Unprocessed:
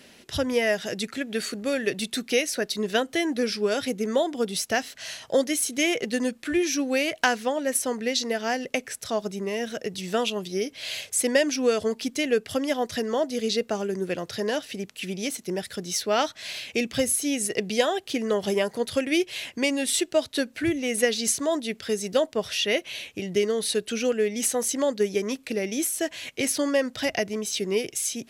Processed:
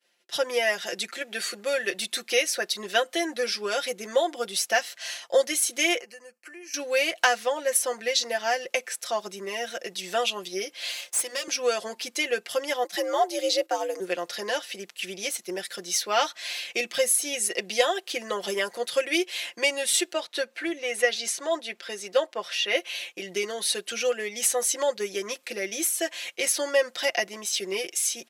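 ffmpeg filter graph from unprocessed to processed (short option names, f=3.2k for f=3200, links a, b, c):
-filter_complex "[0:a]asettb=1/sr,asplit=3[a][b][c];[a]atrim=end=6.004[d];[b]atrim=start=6:end=6.74,asetpts=PTS-STARTPTS,afade=t=in:d=0.004:c=qsin,afade=t=out:st=0.736:d=0.004:c=qsin,acompressor=threshold=-37dB:ratio=8:attack=3.2:release=140:knee=1:detection=peak,asuperstop=centerf=3600:order=4:qfactor=2.5,lowshelf=f=300:g=-5.5[e];[c]atrim=start=6.736[f];[d][e]acrossfade=d=0.004:c1=hsin:c2=qsin[g];[g][f]acrossfade=d=0.004:c1=qsin:c2=hsin,asettb=1/sr,asplit=3[h][i][j];[h]atrim=end=10.914[k];[i]atrim=start=10.91:end=11.48,asetpts=PTS-STARTPTS,afade=t=in:d=0.004:c=qsin,afade=t=out:st=0.566:d=0.004:c=qsin,aeval=exprs='if(lt(val(0),0),0.447*val(0),val(0))':c=same,bandreject=f=60:t=h:w=6,bandreject=f=120:t=h:w=6,bandreject=f=180:t=h:w=6,bandreject=f=240:t=h:w=6,bandreject=f=300:t=h:w=6,bandreject=f=360:t=h:w=6,bandreject=f=420:t=h:w=6,bandreject=f=480:t=h:w=6,bandreject=f=540:t=h:w=6,acrossover=split=220|3000[l][m][n];[m]acompressor=threshold=-41dB:ratio=2:attack=3.2:release=140:knee=2.83:detection=peak[o];[l][o][n]amix=inputs=3:normalize=0[p];[j]atrim=start=11.476[q];[k][p]acrossfade=d=0.004:c1=hsin:c2=qsin[r];[r][q]acrossfade=d=0.004:c1=qsin:c2=hsin,asettb=1/sr,asplit=3[s][t][u];[s]atrim=end=12.844[v];[t]atrim=start=12.84:end=14,asetpts=PTS-STARTPTS,afade=t=in:d=0.004:c=qsin,afade=t=out:st=1.156:d=0.004:c=qsin,agate=range=-10dB:threshold=-38dB:ratio=16:release=100:detection=peak,equalizer=f=14k:t=o:w=0.76:g=5.5,afreqshift=91[w];[u]atrim=start=13.996[x];[v][w]acrossfade=d=0.004:c1=hsin:c2=qsin[y];[y][x]acrossfade=d=0.004:c1=qsin:c2=hsin,asettb=1/sr,asplit=3[z][aa][ab];[z]atrim=end=20.134[ac];[aa]atrim=start=20.13:end=22.75,asetpts=PTS-STARTPTS,afade=t=in:d=0.004:c=qsin,afade=t=out:st=2.616:d=0.004:c=qsin,highpass=f=260:p=1,aemphasis=mode=reproduction:type=cd[ad];[ab]atrim=start=22.746[ae];[ac][ad]acrossfade=d=0.004:c1=hsin:c2=qsin[af];[af][ae]acrossfade=d=0.004:c1=qsin:c2=hsin,agate=range=-33dB:threshold=-39dB:ratio=3:detection=peak,highpass=520,aecho=1:1:5.7:0.76"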